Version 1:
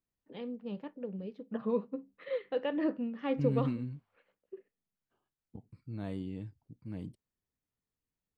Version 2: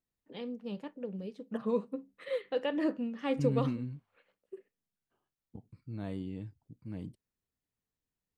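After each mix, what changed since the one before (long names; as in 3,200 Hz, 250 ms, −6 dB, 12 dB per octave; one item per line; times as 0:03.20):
first voice: remove high-frequency loss of the air 220 metres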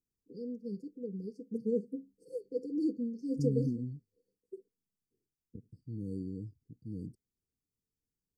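master: add linear-phase brick-wall band-stop 510–4,400 Hz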